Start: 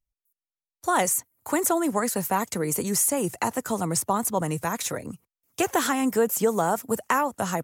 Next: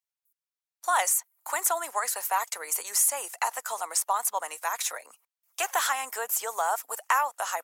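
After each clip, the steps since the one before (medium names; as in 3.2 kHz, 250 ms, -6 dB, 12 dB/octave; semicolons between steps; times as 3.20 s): high-pass 730 Hz 24 dB/octave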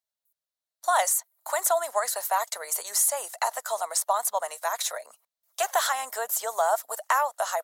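graphic EQ with 31 bands 315 Hz -11 dB, 630 Hz +11 dB, 2.5 kHz -7 dB, 4 kHz +6 dB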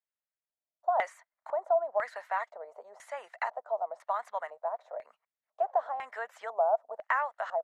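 LFO low-pass square 1 Hz 690–2000 Hz; trim -8.5 dB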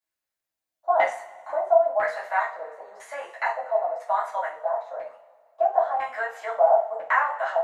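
two-slope reverb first 0.34 s, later 1.9 s, from -21 dB, DRR -7.5 dB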